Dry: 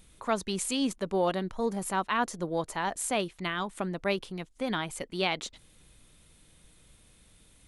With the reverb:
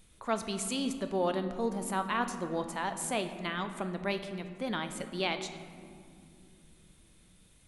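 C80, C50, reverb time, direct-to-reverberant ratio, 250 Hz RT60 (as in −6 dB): 10.5 dB, 9.5 dB, 2.6 s, 7.5 dB, 4.5 s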